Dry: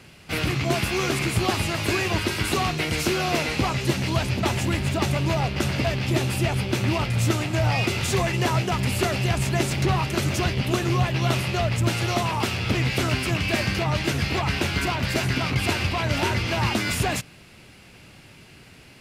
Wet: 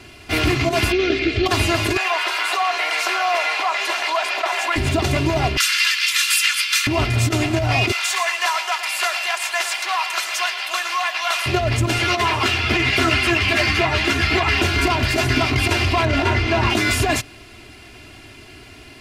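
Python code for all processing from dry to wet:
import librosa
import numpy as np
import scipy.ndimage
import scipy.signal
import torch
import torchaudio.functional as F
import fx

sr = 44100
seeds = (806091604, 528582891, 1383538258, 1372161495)

y = fx.chain(x, sr, fx.lowpass(hz=4300.0, slope=24),
    fx.fixed_phaser(hz=390.0, stages=4), at=(0.92, 1.46))
y = fx.chain(y, sr, fx.highpass(hz=720.0, slope=24),
    fx.high_shelf(hz=3100.0, db=-12.0),
    fx.env_flatten(amount_pct=70), at=(1.97, 4.76))
y = fx.chain(y, sr, fx.steep_highpass(hz=1200.0, slope=48),
    fx.high_shelf(hz=2200.0, db=11.5), at=(5.57, 6.87))
y = fx.chain(y, sr, fx.highpass(hz=870.0, slope=24),
    fx.echo_crushed(ms=114, feedback_pct=35, bits=9, wet_db=-12), at=(7.92, 11.46))
y = fx.chain(y, sr, fx.highpass(hz=48.0, slope=12),
    fx.peak_eq(hz=2000.0, db=7.0, octaves=2.3),
    fx.ensemble(), at=(11.98, 14.62))
y = fx.chain(y, sr, fx.lowpass(hz=2800.0, slope=6),
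    fx.doubler(ms=22.0, db=-10.5), at=(16.05, 16.7))
y = fx.high_shelf(y, sr, hz=9900.0, db=-5.5)
y = y + 0.83 * np.pad(y, (int(2.9 * sr / 1000.0), 0))[:len(y)]
y = fx.over_compress(y, sr, threshold_db=-21.0, ratio=-0.5)
y = F.gain(torch.from_numpy(y), 4.5).numpy()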